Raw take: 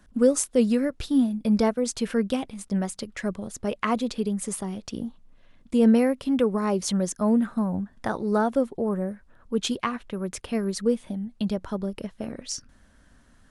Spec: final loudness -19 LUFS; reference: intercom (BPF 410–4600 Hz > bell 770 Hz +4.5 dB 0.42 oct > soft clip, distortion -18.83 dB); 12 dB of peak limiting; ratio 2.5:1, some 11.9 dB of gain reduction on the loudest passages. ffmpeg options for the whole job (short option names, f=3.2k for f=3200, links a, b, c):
-af "acompressor=threshold=-33dB:ratio=2.5,alimiter=level_in=3.5dB:limit=-24dB:level=0:latency=1,volume=-3.5dB,highpass=410,lowpass=4.6k,equalizer=f=770:t=o:w=0.42:g=4.5,asoftclip=threshold=-31.5dB,volume=24.5dB"